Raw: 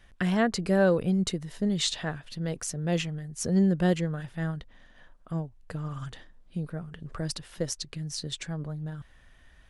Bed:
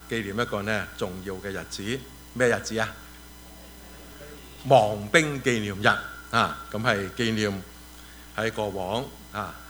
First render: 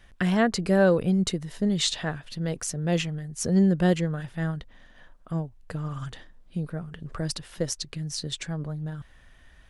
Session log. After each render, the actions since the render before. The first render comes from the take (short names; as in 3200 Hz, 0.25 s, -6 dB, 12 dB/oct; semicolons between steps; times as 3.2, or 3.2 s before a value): gain +2.5 dB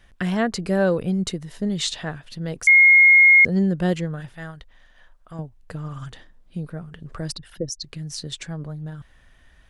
2.67–3.45 bleep 2150 Hz -8.5 dBFS; 4.34–5.39 bell 210 Hz -10.5 dB 2.3 oct; 7.32–7.84 formant sharpening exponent 2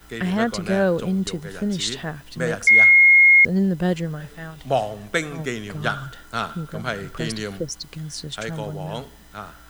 add bed -4 dB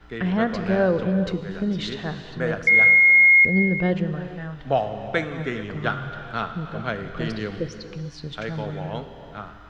air absorption 240 m; non-linear reverb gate 0.48 s flat, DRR 8 dB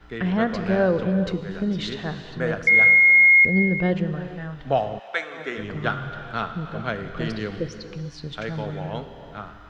4.98–5.57 HPF 1200 Hz -> 310 Hz